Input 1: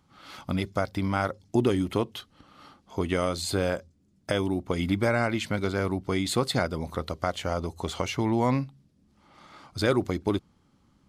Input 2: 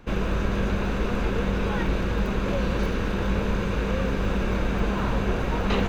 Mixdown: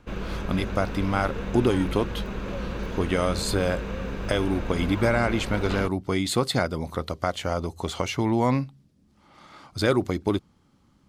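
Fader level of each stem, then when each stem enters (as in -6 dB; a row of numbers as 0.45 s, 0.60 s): +2.0 dB, -6.5 dB; 0.00 s, 0.00 s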